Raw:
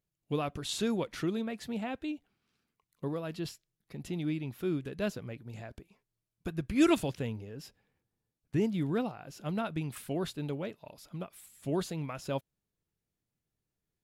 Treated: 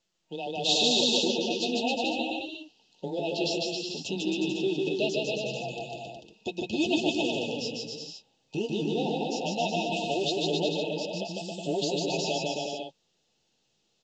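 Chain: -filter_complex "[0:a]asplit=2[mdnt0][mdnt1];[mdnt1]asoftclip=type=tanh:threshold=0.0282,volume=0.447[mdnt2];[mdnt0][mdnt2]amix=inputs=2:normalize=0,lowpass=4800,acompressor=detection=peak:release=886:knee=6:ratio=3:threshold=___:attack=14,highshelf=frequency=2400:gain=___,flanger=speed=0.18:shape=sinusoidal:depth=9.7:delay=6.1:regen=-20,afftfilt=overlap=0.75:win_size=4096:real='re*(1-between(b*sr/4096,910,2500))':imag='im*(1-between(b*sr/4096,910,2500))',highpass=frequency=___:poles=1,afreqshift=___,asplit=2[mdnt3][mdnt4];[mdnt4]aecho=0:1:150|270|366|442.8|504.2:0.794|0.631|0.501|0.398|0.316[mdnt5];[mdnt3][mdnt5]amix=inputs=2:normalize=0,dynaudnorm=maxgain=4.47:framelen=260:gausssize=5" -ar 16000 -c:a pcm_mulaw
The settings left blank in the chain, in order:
0.0316, 7.5, 640, 16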